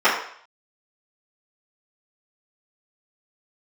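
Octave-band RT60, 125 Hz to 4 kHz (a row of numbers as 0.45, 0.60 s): 0.35, 0.45, 0.55, 0.60, 0.60, 0.60 s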